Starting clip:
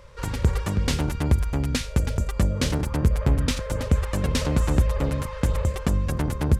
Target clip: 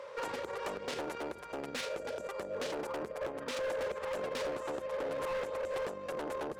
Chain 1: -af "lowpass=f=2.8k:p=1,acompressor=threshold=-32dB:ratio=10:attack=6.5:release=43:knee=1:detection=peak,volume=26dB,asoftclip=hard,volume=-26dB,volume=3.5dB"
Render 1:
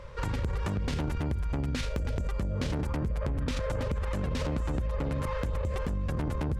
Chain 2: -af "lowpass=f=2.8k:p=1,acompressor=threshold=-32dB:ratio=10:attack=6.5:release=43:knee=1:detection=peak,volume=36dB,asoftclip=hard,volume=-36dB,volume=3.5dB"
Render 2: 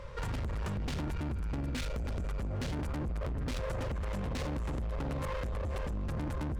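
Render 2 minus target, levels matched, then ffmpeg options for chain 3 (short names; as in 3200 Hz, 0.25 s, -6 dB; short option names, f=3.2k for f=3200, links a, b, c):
500 Hz band -8.0 dB
-af "lowpass=f=2.8k:p=1,acompressor=threshold=-32dB:ratio=10:attack=6.5:release=43:knee=1:detection=peak,highpass=f=500:t=q:w=1.7,volume=36dB,asoftclip=hard,volume=-36dB,volume=3.5dB"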